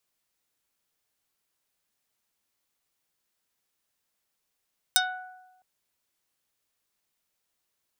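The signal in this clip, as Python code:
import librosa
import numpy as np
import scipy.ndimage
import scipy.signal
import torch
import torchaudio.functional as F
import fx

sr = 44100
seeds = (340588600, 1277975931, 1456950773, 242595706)

y = fx.pluck(sr, length_s=0.66, note=78, decay_s=1.11, pick=0.32, brightness='dark')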